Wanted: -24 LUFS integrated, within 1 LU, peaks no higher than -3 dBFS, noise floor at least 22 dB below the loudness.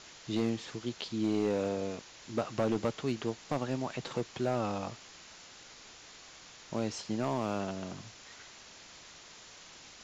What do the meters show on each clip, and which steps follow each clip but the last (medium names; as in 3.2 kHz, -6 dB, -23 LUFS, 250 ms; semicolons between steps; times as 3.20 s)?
clipped samples 0.9%; clipping level -23.5 dBFS; noise floor -53 dBFS; noise floor target -57 dBFS; loudness -35.0 LUFS; peak level -23.5 dBFS; loudness target -24.0 LUFS
-> clip repair -23.5 dBFS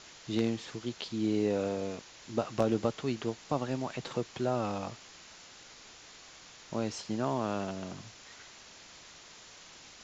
clipped samples 0.0%; noise floor -53 dBFS; noise floor target -56 dBFS
-> noise reduction 6 dB, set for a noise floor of -53 dBFS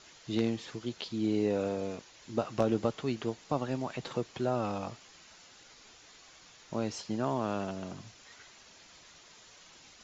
noise floor -57 dBFS; loudness -34.0 LUFS; peak level -14.5 dBFS; loudness target -24.0 LUFS
-> trim +10 dB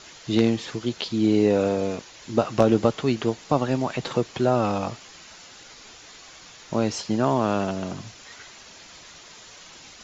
loudness -24.0 LUFS; peak level -4.5 dBFS; noise floor -47 dBFS